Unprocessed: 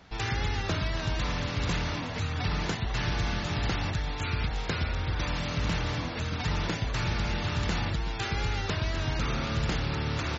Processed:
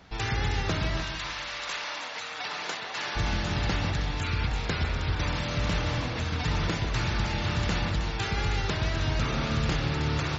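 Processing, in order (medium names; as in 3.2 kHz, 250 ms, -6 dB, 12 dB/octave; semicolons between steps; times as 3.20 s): 1.02–3.15 s: high-pass 1.1 kHz -> 490 Hz 12 dB/octave; two-band feedback delay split 2.3 kHz, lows 148 ms, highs 316 ms, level -8 dB; trim +1 dB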